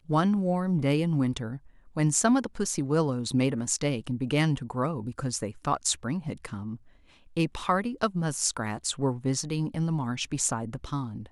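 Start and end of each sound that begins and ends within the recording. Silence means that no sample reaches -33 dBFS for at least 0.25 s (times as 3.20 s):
1.97–6.75 s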